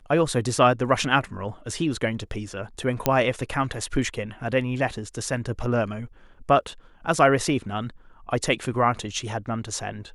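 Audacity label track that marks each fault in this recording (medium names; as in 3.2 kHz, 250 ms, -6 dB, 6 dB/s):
3.060000	3.060000	pop -5 dBFS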